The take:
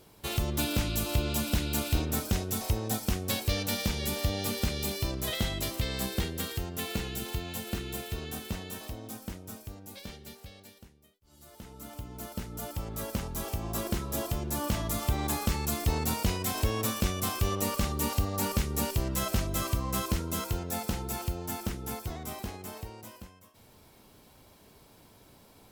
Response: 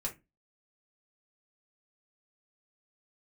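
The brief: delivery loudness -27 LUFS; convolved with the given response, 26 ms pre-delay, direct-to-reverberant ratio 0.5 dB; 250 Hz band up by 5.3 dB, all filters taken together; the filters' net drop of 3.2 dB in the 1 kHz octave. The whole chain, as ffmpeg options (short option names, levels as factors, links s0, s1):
-filter_complex "[0:a]equalizer=f=250:t=o:g=7,equalizer=f=1000:t=o:g=-4.5,asplit=2[s0][s1];[1:a]atrim=start_sample=2205,adelay=26[s2];[s1][s2]afir=irnorm=-1:irlink=0,volume=0.841[s3];[s0][s3]amix=inputs=2:normalize=0,volume=1.06"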